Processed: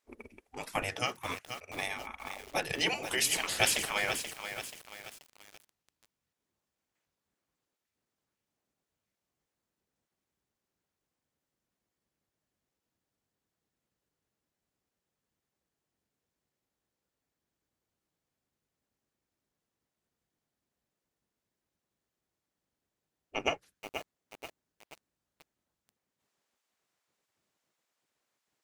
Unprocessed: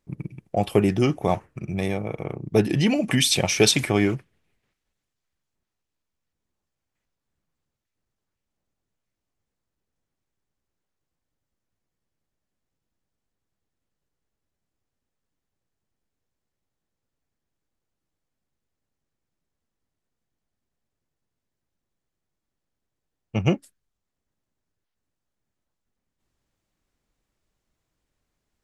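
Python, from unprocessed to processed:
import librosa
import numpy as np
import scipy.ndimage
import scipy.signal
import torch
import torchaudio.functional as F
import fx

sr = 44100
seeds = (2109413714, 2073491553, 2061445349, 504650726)

y = fx.highpass(x, sr, hz=230.0, slope=12, at=(0.82, 1.75))
y = fx.spec_gate(y, sr, threshold_db=-15, keep='weak')
y = fx.echo_crushed(y, sr, ms=482, feedback_pct=55, bits=7, wet_db=-7.5)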